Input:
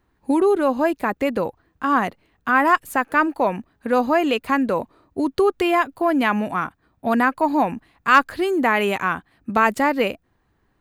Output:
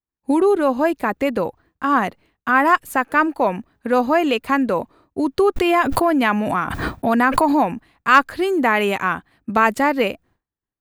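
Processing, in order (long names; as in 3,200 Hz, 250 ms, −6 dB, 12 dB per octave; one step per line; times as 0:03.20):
downward expander −48 dBFS
0:05.56–0:07.75: background raised ahead of every attack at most 24 dB per second
level +1.5 dB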